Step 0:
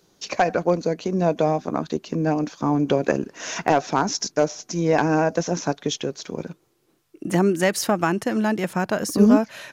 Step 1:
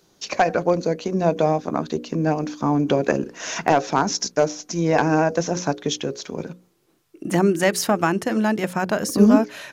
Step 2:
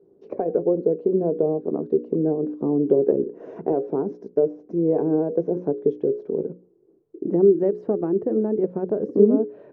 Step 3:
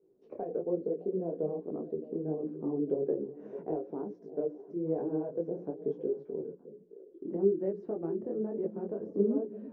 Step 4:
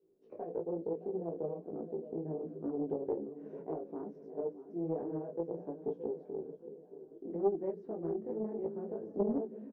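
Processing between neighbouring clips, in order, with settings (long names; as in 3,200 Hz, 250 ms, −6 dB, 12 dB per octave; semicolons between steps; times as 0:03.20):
mains-hum notches 60/120/180/240/300/360/420/480/540 Hz; level +1.5 dB
low-shelf EQ 78 Hz −11.5 dB; downward compressor 1.5 to 1, threshold −28 dBFS, peak gain reduction 7 dB; low-pass with resonance 420 Hz, resonance Q 4.9; level −1.5 dB
echo through a band-pass that steps 307 ms, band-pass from 180 Hz, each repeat 1.4 octaves, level −10.5 dB; micro pitch shift up and down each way 40 cents; level −8.5 dB
double-tracking delay 18 ms −5 dB; repeating echo 624 ms, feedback 56%, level −15 dB; highs frequency-modulated by the lows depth 0.42 ms; level −5.5 dB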